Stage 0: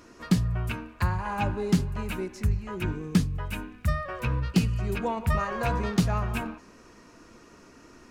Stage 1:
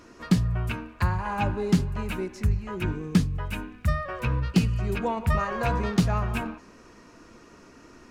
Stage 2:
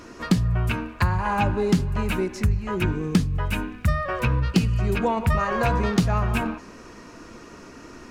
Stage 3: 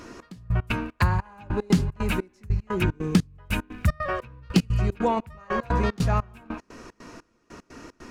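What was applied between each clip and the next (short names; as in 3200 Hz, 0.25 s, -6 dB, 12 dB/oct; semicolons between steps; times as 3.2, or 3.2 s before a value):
high shelf 7400 Hz -4.5 dB; gain +1.5 dB
compressor 2:1, threshold -28 dBFS, peak gain reduction 7.5 dB; gain +7.5 dB
step gate "xx...x.xx." 150 bpm -24 dB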